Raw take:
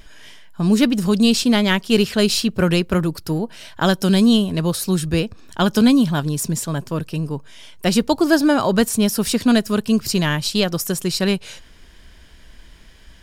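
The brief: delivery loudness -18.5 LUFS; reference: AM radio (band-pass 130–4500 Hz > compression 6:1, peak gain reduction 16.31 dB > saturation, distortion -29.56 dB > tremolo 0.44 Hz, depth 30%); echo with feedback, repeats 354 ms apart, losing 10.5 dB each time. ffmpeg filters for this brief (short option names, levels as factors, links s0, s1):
-af "highpass=130,lowpass=4500,aecho=1:1:354|708|1062:0.299|0.0896|0.0269,acompressor=threshold=0.0447:ratio=6,asoftclip=threshold=0.178,tremolo=f=0.44:d=0.3,volume=5.01"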